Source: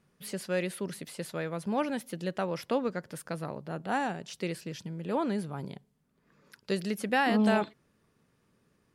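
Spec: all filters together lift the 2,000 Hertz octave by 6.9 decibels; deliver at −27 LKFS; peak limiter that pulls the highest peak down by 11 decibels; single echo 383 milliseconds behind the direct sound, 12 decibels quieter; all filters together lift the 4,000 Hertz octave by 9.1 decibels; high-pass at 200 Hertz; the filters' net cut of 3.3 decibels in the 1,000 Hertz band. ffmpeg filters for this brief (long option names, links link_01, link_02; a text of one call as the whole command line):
ffmpeg -i in.wav -af "highpass=200,equalizer=frequency=1000:width_type=o:gain=-7,equalizer=frequency=2000:width_type=o:gain=9,equalizer=frequency=4000:width_type=o:gain=9,alimiter=limit=-20dB:level=0:latency=1,aecho=1:1:383:0.251,volume=7dB" out.wav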